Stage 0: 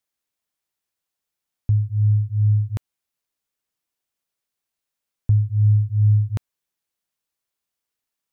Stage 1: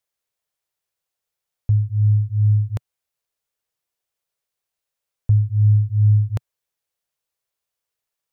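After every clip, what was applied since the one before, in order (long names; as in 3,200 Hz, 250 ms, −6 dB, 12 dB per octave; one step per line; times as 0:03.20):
octave-band graphic EQ 125/250/500 Hz +3/−9/+5 dB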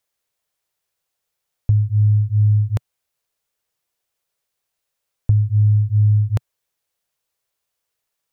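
downward compressor, threshold −17 dBFS, peak gain reduction 6 dB
level +5 dB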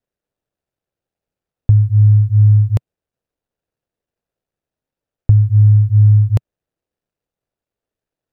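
running median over 41 samples
level +5.5 dB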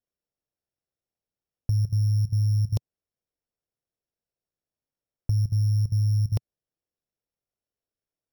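samples sorted by size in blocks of 8 samples
output level in coarse steps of 15 dB
level −6.5 dB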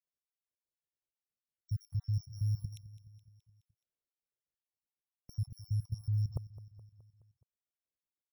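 time-frequency cells dropped at random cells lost 56%
repeating echo 211 ms, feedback 58%, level −17 dB
level −8.5 dB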